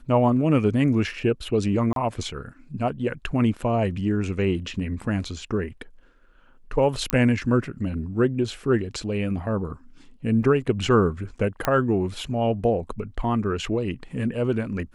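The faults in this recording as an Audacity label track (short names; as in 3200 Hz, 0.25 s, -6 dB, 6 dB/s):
1.930000	1.960000	gap 32 ms
7.100000	7.100000	pop -6 dBFS
10.430000	10.430000	gap 3.2 ms
11.650000	11.650000	pop -8 dBFS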